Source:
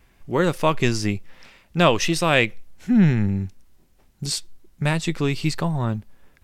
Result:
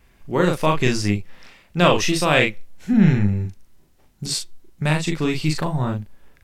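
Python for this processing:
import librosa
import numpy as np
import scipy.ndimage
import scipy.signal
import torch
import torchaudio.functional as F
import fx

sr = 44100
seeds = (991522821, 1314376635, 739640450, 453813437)

y = fx.doubler(x, sr, ms=39.0, db=-3.5)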